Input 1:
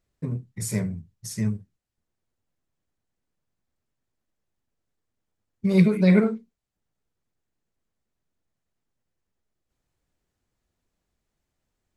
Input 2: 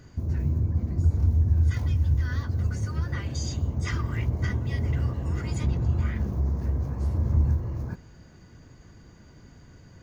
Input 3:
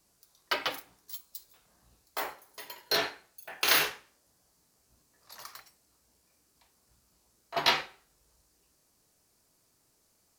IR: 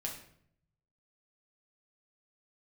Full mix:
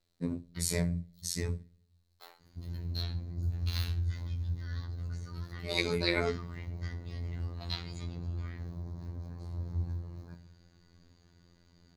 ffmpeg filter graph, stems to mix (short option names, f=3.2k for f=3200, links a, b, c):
-filter_complex "[0:a]volume=1dB,asplit=3[a][b][c];[b]volume=-17.5dB[d];[1:a]adelay=2400,volume=-13dB,asplit=2[e][f];[f]volume=-3dB[g];[2:a]adelay=50,volume=-18dB[h];[c]apad=whole_len=459976[i];[h][i]sidechaincompress=threshold=-39dB:ratio=4:attack=16:release=496[j];[3:a]atrim=start_sample=2205[k];[d][g]amix=inputs=2:normalize=0[l];[l][k]afir=irnorm=-1:irlink=0[m];[a][e][j][m]amix=inputs=4:normalize=0,afftfilt=real='re*lt(hypot(re,im),0.708)':imag='im*lt(hypot(re,im),0.708)':win_size=1024:overlap=0.75,equalizer=f=4.1k:t=o:w=0.39:g=13.5,afftfilt=real='hypot(re,im)*cos(PI*b)':imag='0':win_size=2048:overlap=0.75"